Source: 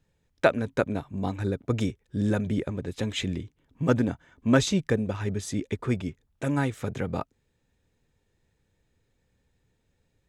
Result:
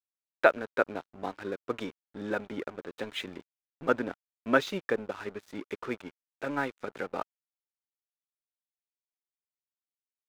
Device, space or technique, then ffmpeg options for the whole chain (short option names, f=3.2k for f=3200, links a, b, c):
pocket radio on a weak battery: -af "highpass=380,lowpass=3.2k,aeval=exprs='sgn(val(0))*max(abs(val(0))-0.00531,0)':c=same,equalizer=f=1.4k:t=o:w=0.25:g=5"